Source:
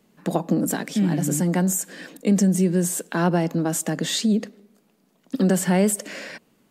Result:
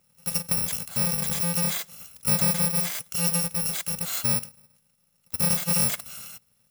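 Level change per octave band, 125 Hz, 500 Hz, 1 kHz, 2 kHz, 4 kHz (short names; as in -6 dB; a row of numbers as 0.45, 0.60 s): -7.0, -12.5, -7.0, -3.5, +1.0 dB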